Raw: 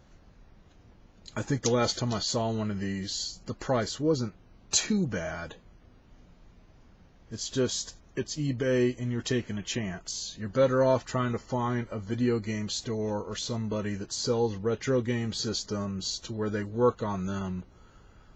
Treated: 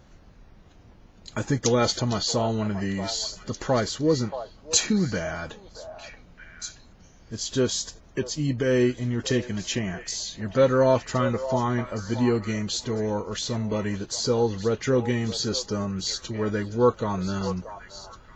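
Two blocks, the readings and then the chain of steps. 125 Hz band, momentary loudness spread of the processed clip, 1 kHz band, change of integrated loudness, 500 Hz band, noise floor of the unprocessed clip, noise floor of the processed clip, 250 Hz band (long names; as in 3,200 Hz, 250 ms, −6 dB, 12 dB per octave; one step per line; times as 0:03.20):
+4.0 dB, 15 LU, +4.5 dB, +4.0 dB, +4.5 dB, −57 dBFS, −52 dBFS, +4.0 dB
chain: on a send: echo through a band-pass that steps 628 ms, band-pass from 750 Hz, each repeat 1.4 octaves, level −7.5 dB
on the sum: level +4 dB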